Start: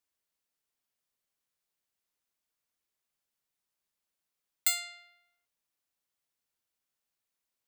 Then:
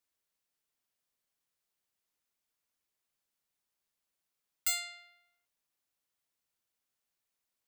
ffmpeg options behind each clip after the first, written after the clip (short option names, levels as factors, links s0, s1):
-af "volume=18.8,asoftclip=hard,volume=0.0531"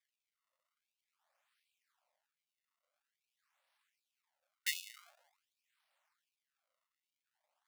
-af "acrusher=samples=31:mix=1:aa=0.000001:lfo=1:lforange=49.6:lforate=0.47,afftfilt=real='re*gte(b*sr/1024,490*pow(2300/490,0.5+0.5*sin(2*PI*1.3*pts/sr)))':imag='im*gte(b*sr/1024,490*pow(2300/490,0.5+0.5*sin(2*PI*1.3*pts/sr)))':win_size=1024:overlap=0.75,volume=1.88"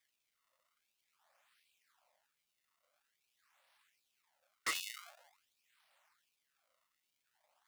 -af "aeval=exprs='0.0168*(abs(mod(val(0)/0.0168+3,4)-2)-1)':c=same,volume=2.37"